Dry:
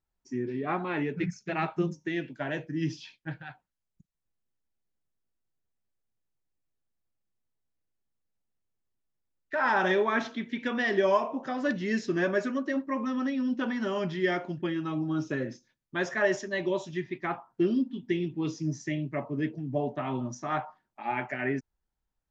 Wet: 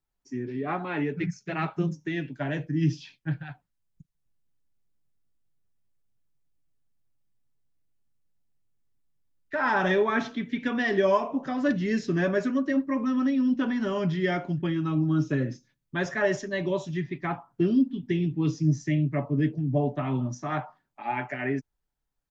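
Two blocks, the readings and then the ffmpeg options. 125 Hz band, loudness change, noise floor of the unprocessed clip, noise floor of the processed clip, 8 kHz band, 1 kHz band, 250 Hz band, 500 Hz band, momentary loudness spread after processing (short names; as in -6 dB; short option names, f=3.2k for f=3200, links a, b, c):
+8.0 dB, +3.0 dB, -84 dBFS, -80 dBFS, n/a, +0.5 dB, +4.0 dB, +1.5 dB, 10 LU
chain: -filter_complex "[0:a]aecho=1:1:7:0.32,acrossover=split=230[a][b];[a]dynaudnorm=f=200:g=21:m=8.5dB[c];[c][b]amix=inputs=2:normalize=0"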